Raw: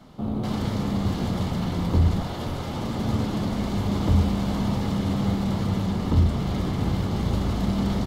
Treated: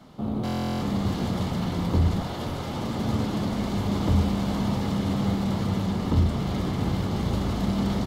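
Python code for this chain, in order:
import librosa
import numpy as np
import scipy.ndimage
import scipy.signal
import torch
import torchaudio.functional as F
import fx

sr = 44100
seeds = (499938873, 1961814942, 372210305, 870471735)

y = fx.low_shelf(x, sr, hz=66.0, db=-6.5)
y = fx.buffer_glitch(y, sr, at_s=(0.44,), block=1024, repeats=15)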